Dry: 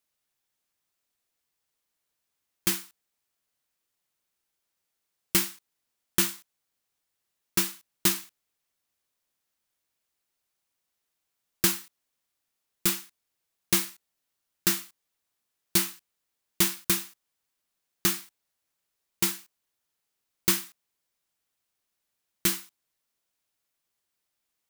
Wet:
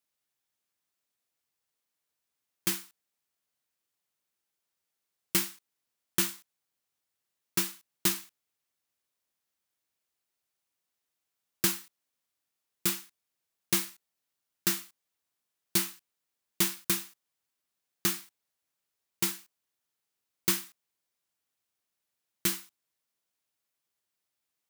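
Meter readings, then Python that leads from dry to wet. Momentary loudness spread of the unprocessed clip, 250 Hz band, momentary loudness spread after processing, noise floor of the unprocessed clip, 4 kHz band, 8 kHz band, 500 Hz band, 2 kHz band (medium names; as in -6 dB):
9 LU, -3.5 dB, 9 LU, -82 dBFS, -3.5 dB, -3.5 dB, -3.5 dB, -3.5 dB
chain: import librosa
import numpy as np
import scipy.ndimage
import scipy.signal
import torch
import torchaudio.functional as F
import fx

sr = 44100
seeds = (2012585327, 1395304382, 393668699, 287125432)

y = scipy.signal.sosfilt(scipy.signal.butter(2, 67.0, 'highpass', fs=sr, output='sos'), x)
y = y * 10.0 ** (-3.5 / 20.0)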